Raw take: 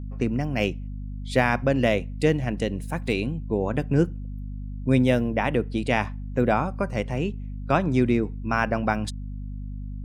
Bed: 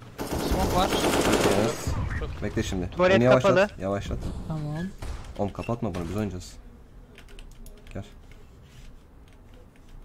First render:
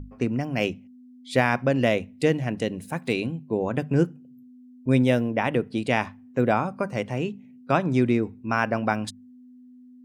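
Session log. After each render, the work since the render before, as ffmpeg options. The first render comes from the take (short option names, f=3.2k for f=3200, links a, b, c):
-af "bandreject=f=50:t=h:w=6,bandreject=f=100:t=h:w=6,bandreject=f=150:t=h:w=6,bandreject=f=200:t=h:w=6"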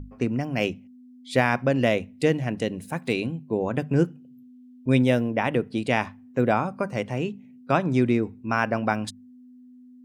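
-filter_complex "[0:a]asettb=1/sr,asplit=3[a][b][c];[a]atrim=end=4.074[d];[b]atrim=start=4.07:end=5.02,asetpts=PTS-STARTPTS,afade=t=in:d=0.004:c=qsin,afade=t=out:st=0.946:d=0.004:c=qsin,equalizer=f=3.1k:t=o:w=0.77:g=6[e];[c]atrim=start=5.016[f];[d][e]acrossfade=d=0.004:c1=hsin:c2=qsin[g];[g][f]acrossfade=d=0.004:c1=qsin:c2=hsin"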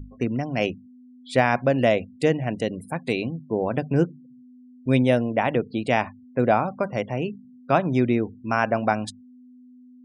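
-af "afftfilt=real='re*gte(hypot(re,im),0.00631)':imag='im*gte(hypot(re,im),0.00631)':win_size=1024:overlap=0.75,adynamicequalizer=threshold=0.0178:dfrequency=680:dqfactor=2.2:tfrequency=680:tqfactor=2.2:attack=5:release=100:ratio=0.375:range=2.5:mode=boostabove:tftype=bell"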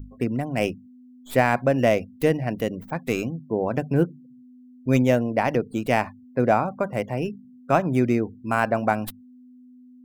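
-filter_complex "[0:a]acrossover=split=3300[a][b];[b]aeval=exprs='abs(val(0))':c=same[c];[a][c]amix=inputs=2:normalize=0,crystalizer=i=1:c=0"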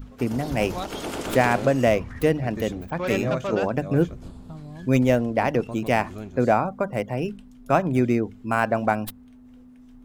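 -filter_complex "[1:a]volume=-8dB[a];[0:a][a]amix=inputs=2:normalize=0"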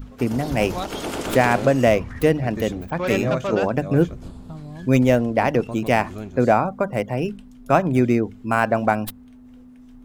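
-af "volume=3dB,alimiter=limit=-3dB:level=0:latency=1"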